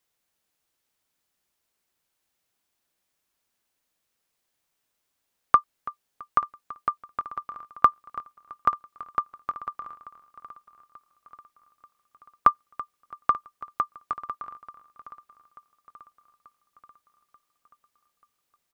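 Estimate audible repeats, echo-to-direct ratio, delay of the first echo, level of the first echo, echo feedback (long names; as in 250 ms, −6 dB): 7, −14.0 dB, 332 ms, −17.5 dB, repeats not evenly spaced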